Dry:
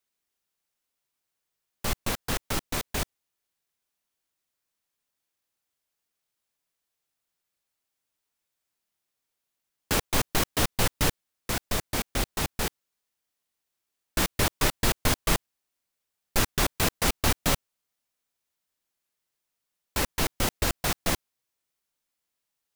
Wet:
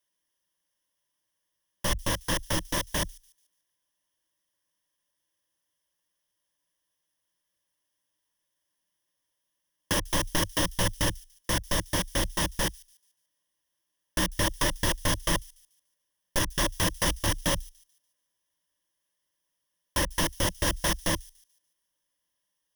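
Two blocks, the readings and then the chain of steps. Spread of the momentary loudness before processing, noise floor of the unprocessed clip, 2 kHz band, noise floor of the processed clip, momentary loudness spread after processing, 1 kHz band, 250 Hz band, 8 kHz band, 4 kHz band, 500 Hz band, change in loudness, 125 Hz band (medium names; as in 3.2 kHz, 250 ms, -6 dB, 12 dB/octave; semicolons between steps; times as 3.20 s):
7 LU, -84 dBFS, -0.5 dB, -81 dBFS, 5 LU, -1.0 dB, 0.0 dB, 0.0 dB, +0.5 dB, -0.5 dB, -0.5 dB, -0.5 dB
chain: rippled EQ curve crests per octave 1.2, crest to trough 12 dB; peak limiter -14.5 dBFS, peak gain reduction 6.5 dB; feedback echo behind a high-pass 145 ms, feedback 35%, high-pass 5.4 kHz, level -19 dB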